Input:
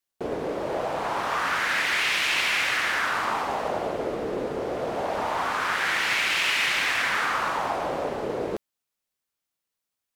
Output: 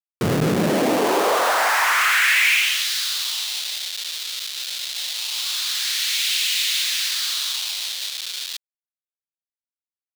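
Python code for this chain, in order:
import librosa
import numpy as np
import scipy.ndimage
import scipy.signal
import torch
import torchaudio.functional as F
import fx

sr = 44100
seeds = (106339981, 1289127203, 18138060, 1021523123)

y = fx.schmitt(x, sr, flips_db=-29.5)
y = fx.filter_sweep_highpass(y, sr, from_hz=87.0, to_hz=3800.0, start_s=0.05, end_s=2.88, q=2.8)
y = y * librosa.db_to_amplitude(6.0)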